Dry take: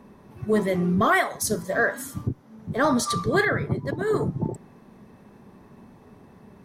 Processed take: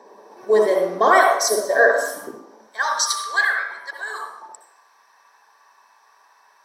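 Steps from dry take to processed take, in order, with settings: HPF 470 Hz 24 dB/oct, from 2.61 s 1100 Hz; reverb RT60 0.75 s, pre-delay 60 ms, DRR 1.5 dB; gain -1 dB

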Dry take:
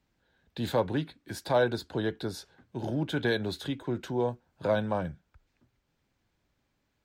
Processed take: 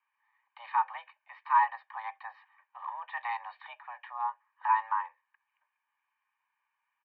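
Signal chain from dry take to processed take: comb 1.5 ms, depth 89%; mistuned SSB +350 Hz 490–2300 Hz; gain -2 dB

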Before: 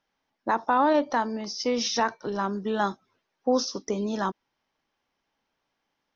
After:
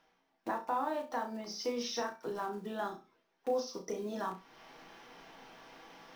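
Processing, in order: block floating point 5-bit; reverse; upward compressor, threshold -36 dBFS; reverse; tone controls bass -1 dB, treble -5 dB; compressor 2:1, threshold -45 dBFS, peak gain reduction 14.5 dB; bell 86 Hz -12.5 dB 1.6 oct; flutter echo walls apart 5.7 m, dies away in 0.27 s; on a send at -6 dB: reverb RT60 0.15 s, pre-delay 3 ms

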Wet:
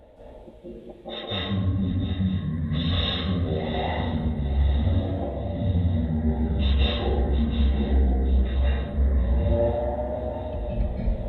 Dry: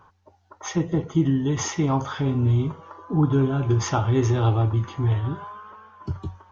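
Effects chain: reverse; compressor, threshold -32 dBFS, peak gain reduction 16 dB; reverse; bell 1600 Hz -8.5 dB 1.6 oct; limiter -32.5 dBFS, peak gain reduction 8 dB; plate-style reverb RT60 0.79 s, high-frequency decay 0.5×, pre-delay 90 ms, DRR -9.5 dB; speed mistake 78 rpm record played at 45 rpm; bell 150 Hz -8 dB 0.28 oct; on a send: swung echo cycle 0.951 s, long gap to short 3:1, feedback 56%, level -14 dB; on the sum: gain +7.5 dB

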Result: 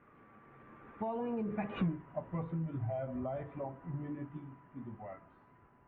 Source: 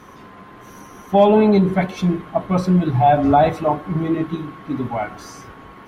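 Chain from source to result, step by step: Doppler pass-by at 1.84, 36 m/s, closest 1.9 m; compressor 4:1, threshold -49 dBFS, peak gain reduction 27 dB; inverse Chebyshev low-pass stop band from 4800 Hz, stop band 40 dB; bell 130 Hz +5.5 dB 0.32 oct; gain +11.5 dB

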